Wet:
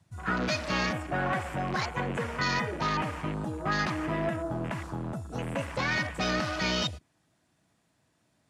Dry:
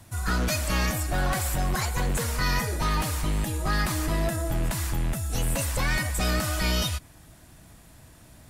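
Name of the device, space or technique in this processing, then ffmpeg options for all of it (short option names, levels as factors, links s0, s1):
over-cleaned archive recording: -af "highpass=150,lowpass=7500,afwtdn=0.0141"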